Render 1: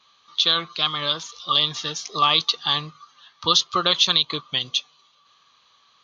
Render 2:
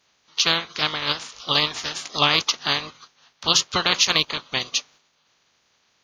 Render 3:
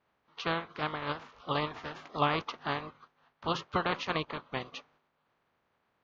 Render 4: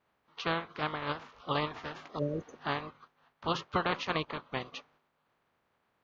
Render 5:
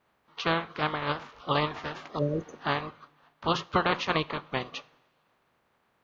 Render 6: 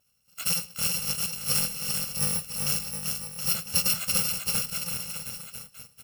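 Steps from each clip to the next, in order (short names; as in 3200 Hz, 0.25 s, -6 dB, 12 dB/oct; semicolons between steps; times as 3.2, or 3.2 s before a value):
spectral limiter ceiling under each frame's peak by 23 dB; gate -46 dBFS, range -6 dB
LPF 1400 Hz 12 dB/oct; gain -4.5 dB
spectral repair 2.21–2.54, 610–6000 Hz after
two-slope reverb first 0.4 s, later 2.2 s, from -18 dB, DRR 18 dB; gain +5 dB
FFT order left unsorted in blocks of 128 samples; bouncing-ball echo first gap 0.39 s, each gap 0.85×, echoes 5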